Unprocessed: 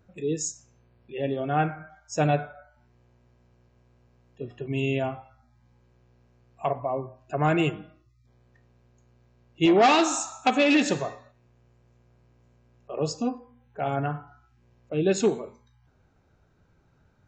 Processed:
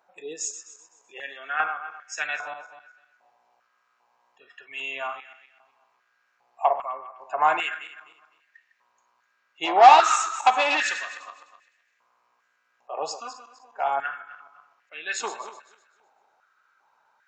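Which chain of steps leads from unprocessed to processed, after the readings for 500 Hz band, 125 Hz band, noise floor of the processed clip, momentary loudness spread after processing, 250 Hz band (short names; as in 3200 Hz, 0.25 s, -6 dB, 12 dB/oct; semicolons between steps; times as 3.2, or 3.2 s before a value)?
-3.0 dB, under -30 dB, -70 dBFS, 22 LU, -18.0 dB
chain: regenerating reverse delay 0.127 s, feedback 49%, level -11 dB; stepped high-pass 2.5 Hz 830–1800 Hz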